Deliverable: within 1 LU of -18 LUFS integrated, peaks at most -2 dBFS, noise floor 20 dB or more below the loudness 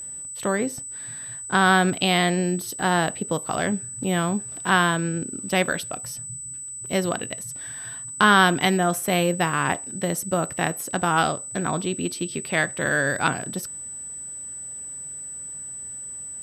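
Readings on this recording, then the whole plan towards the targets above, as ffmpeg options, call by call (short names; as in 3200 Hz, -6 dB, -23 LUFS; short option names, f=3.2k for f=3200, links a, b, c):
steady tone 8000 Hz; tone level -33 dBFS; loudness -24.0 LUFS; peak -4.5 dBFS; loudness target -18.0 LUFS
-> -af "bandreject=f=8k:w=30"
-af "volume=6dB,alimiter=limit=-2dB:level=0:latency=1"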